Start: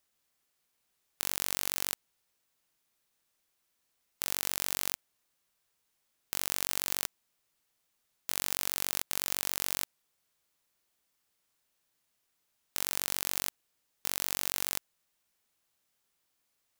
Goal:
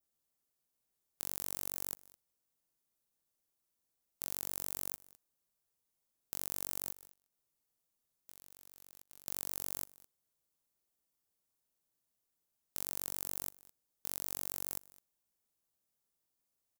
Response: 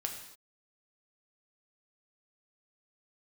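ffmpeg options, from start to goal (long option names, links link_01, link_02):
-filter_complex "[0:a]asplit=3[link_01][link_02][link_03];[link_01]afade=type=out:start_time=6.91:duration=0.02[link_04];[link_02]acompressor=threshold=-43dB:ratio=20,afade=type=in:start_time=6.91:duration=0.02,afade=type=out:start_time=9.26:duration=0.02[link_05];[link_03]afade=type=in:start_time=9.26:duration=0.02[link_06];[link_04][link_05][link_06]amix=inputs=3:normalize=0,equalizer=frequency=2300:width_type=o:width=2.6:gain=-10,aecho=1:1:210:0.075,adynamicequalizer=threshold=0.00112:dfrequency=3600:dqfactor=0.91:tfrequency=3600:tqfactor=0.91:attack=5:release=100:ratio=0.375:range=3:mode=cutabove:tftype=bell,volume=-4.5dB"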